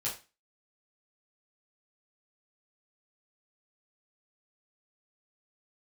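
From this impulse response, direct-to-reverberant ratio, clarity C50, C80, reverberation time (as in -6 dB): -7.0 dB, 8.5 dB, 15.0 dB, 0.30 s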